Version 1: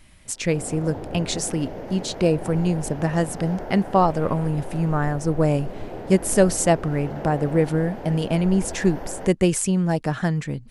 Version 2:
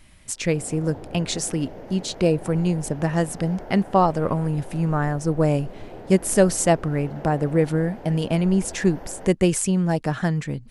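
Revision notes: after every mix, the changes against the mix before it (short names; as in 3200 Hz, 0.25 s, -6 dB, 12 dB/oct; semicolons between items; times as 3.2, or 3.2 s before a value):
background -5.0 dB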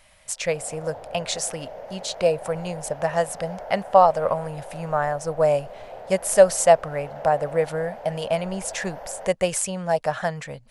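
master: add resonant low shelf 440 Hz -9.5 dB, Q 3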